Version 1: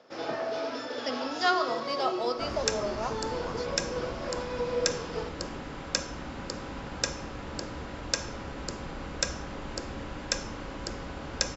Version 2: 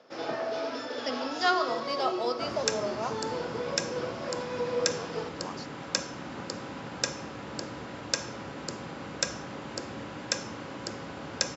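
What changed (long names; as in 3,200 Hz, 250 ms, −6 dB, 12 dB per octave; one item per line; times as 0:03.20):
speech: entry +2.00 s
master: add high-pass filter 100 Hz 24 dB per octave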